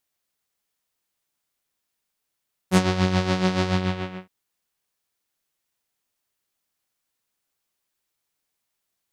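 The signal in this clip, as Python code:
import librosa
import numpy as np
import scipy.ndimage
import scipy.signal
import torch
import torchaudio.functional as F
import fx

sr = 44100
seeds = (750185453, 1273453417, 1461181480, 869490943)

y = fx.sub_patch_tremolo(sr, seeds[0], note=54, wave='saw', wave2='saw', interval_st=-12, detune_cents=25, level2_db=-4.5, sub_db=-15.0, noise_db=-30.0, kind='lowpass', cutoff_hz=2400.0, q=1.4, env_oct=2.5, env_decay_s=0.12, env_sustain_pct=40, attack_ms=65.0, decay_s=0.06, sustain_db=-8.0, release_s=0.61, note_s=0.96, lfo_hz=7.0, tremolo_db=8.5)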